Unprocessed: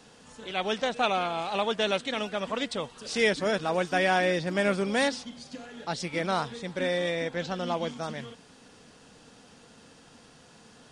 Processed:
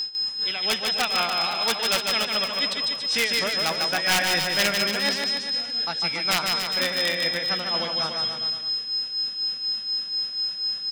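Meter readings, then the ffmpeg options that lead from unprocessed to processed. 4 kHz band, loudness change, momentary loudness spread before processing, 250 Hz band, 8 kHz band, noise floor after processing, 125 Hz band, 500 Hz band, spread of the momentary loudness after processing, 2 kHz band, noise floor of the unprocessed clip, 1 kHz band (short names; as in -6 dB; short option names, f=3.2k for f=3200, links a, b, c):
+14.5 dB, +6.0 dB, 12 LU, -3.0 dB, +11.5 dB, -34 dBFS, -2.5 dB, -3.0 dB, 4 LU, +5.5 dB, -55 dBFS, +1.0 dB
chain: -filter_complex "[0:a]aeval=exprs='val(0)+0.0282*sin(2*PI*5100*n/s)':c=same,acontrast=49,tremolo=f=4.1:d=0.84,aeval=exprs='(mod(4.22*val(0)+1,2)-1)/4.22':c=same,tiltshelf=f=970:g=-9,acontrast=50,bass=f=250:g=4,treble=f=4k:g=-8,asplit=2[a][b];[b]aecho=0:1:150|285|406.5|515.8|614.3:0.631|0.398|0.251|0.158|0.1[c];[a][c]amix=inputs=2:normalize=0,volume=-7dB"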